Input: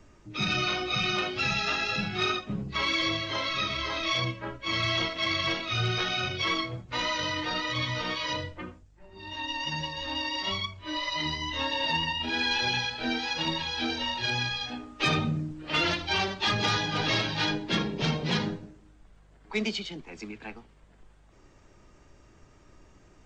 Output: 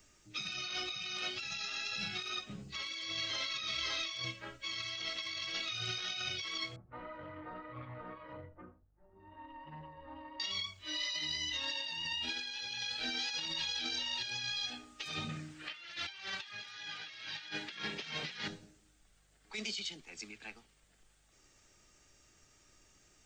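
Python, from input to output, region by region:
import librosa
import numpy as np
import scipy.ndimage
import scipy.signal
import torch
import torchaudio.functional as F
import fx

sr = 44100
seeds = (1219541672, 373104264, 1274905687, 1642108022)

y = fx.chain(x, sr, fx.lowpass(hz=1200.0, slope=24),
    fx.doppler_dist(depth_ms=0.15), at=(6.76, 10.4))
y = fx.chain(y, sr, fx.highpass(hz=59.0, slope=12),
    fx.peak_eq(hz=1800.0, db=12.5, octaves=2.1), at=(15.29, 18.48))
y = librosa.effects.preemphasis(y, coef=0.9, zi=[0.0])
y = fx.notch(y, sr, hz=1000.0, q=8.4)
y = fx.over_compress(y, sr, threshold_db=-42.0, ratio=-1.0)
y = y * 10.0 ** (1.0 / 20.0)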